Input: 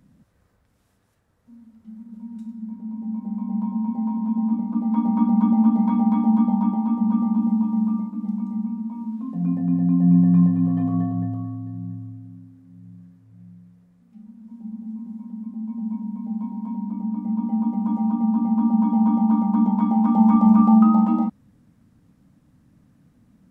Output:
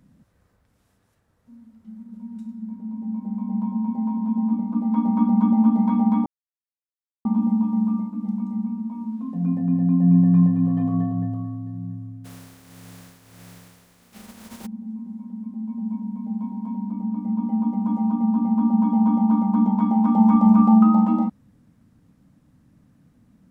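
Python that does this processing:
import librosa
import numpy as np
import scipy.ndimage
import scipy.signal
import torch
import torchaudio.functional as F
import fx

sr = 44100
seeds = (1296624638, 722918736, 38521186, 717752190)

y = fx.spec_flatten(x, sr, power=0.44, at=(12.24, 14.65), fade=0.02)
y = fx.edit(y, sr, fx.silence(start_s=6.26, length_s=0.99), tone=tone)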